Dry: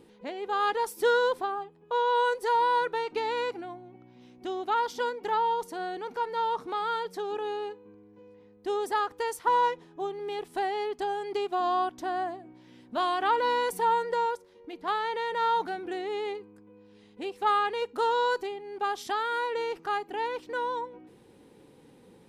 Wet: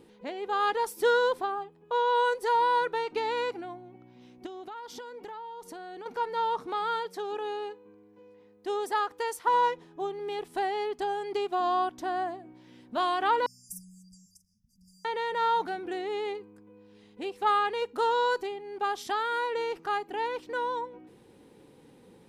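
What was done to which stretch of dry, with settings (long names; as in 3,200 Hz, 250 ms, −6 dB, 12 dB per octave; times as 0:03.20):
0:04.46–0:06.06: downward compressor 16 to 1, threshold −38 dBFS
0:07.00–0:09.54: low-shelf EQ 190 Hz −9 dB
0:13.46–0:15.05: linear-phase brick-wall band-stop 220–4,700 Hz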